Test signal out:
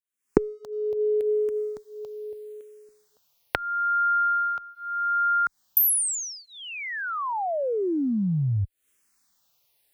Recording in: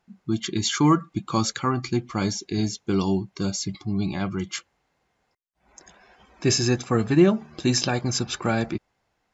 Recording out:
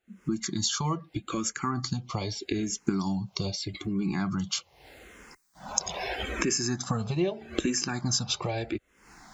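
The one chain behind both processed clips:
camcorder AGC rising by 77 dB per second
high-shelf EQ 4,100 Hz +5 dB
frequency shifter mixed with the dry sound −0.8 Hz
level −6 dB

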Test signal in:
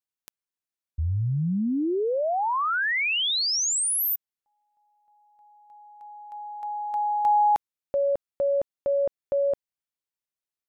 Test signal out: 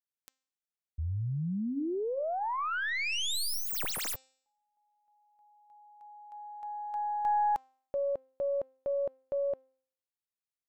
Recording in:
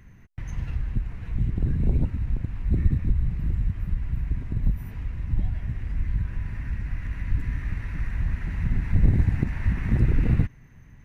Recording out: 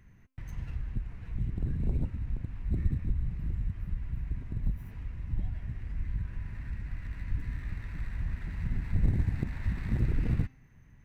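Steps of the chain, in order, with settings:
stylus tracing distortion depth 0.098 ms
hum removal 262.3 Hz, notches 31
level −7.5 dB

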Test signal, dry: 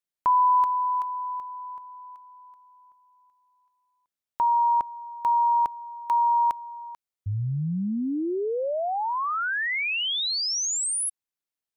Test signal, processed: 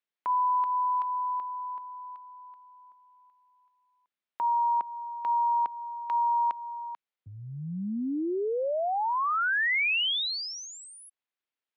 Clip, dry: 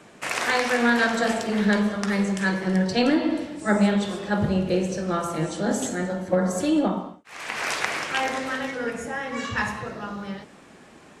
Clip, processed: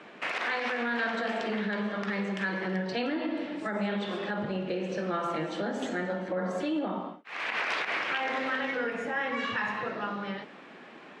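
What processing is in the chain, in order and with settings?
downward compressor 2.5 to 1, threshold −28 dBFS
three-way crossover with the lows and the highs turned down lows −24 dB, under 170 Hz, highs −24 dB, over 3,600 Hz
brickwall limiter −23.5 dBFS
parametric band 4,000 Hz +5.5 dB 2.8 octaves

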